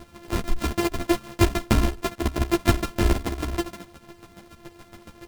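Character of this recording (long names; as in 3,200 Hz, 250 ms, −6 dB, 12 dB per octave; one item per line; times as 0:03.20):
a buzz of ramps at a fixed pitch in blocks of 128 samples
chopped level 7.1 Hz, depth 65%, duty 20%
a shimmering, thickened sound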